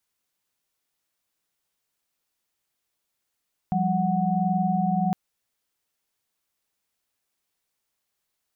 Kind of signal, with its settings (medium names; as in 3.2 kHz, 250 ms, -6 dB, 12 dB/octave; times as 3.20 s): chord F3/G3/F#5 sine, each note -25 dBFS 1.41 s